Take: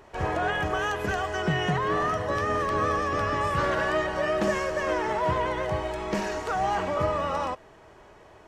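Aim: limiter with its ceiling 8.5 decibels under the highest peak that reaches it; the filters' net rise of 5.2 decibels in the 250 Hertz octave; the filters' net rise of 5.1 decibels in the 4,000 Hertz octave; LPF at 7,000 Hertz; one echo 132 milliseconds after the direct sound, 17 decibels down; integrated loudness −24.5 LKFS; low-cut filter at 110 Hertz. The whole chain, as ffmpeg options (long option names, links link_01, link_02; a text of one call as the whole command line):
ffmpeg -i in.wav -af "highpass=110,lowpass=7000,equalizer=frequency=250:width_type=o:gain=8,equalizer=frequency=4000:width_type=o:gain=8,alimiter=limit=-19dB:level=0:latency=1,aecho=1:1:132:0.141,volume=3.5dB" out.wav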